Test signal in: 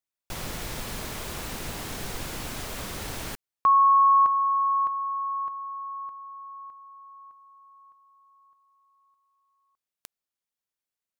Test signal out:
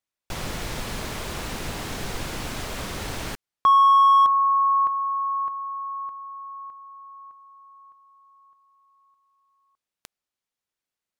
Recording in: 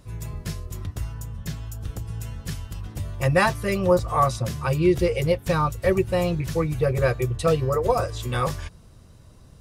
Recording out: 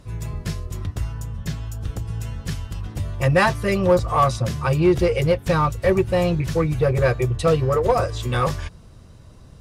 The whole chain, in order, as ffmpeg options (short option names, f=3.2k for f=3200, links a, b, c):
-filter_complex "[0:a]highshelf=f=10k:g=-10,asplit=2[a][b];[b]asoftclip=type=hard:threshold=-20.5dB,volume=-4.5dB[c];[a][c]amix=inputs=2:normalize=0"